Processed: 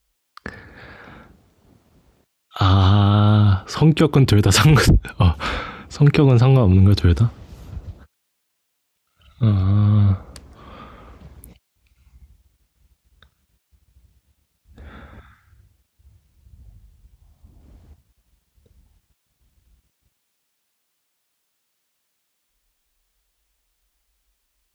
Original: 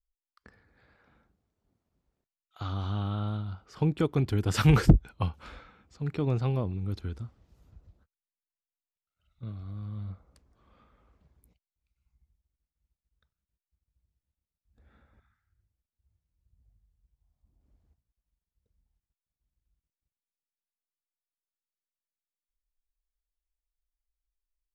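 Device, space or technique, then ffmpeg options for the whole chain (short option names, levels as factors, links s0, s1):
mastering chain: -filter_complex "[0:a]asettb=1/sr,asplit=3[s0][s1][s2];[s0]atrim=end=9.634[s3];[s1]atrim=start=9.63:end=10.1,asetpts=PTS-STARTPTS,afade=t=in:d=0.004:c=qsin,afade=t=out:st=0.466:d=0.004:c=qsin,lowpass=5100[s4];[s2]atrim=start=10.096[s5];[s3][s4]acrossfade=d=0.004:c1=hsin:c2=qsin[s6];[s6][s5]acrossfade=d=0.004:c1=qsin:c2=hsin,highpass=58,equalizer=f=3100:t=o:w=0.77:g=2,acompressor=threshold=0.0316:ratio=2,alimiter=level_in=21.1:limit=0.891:release=50:level=0:latency=1,volume=0.668"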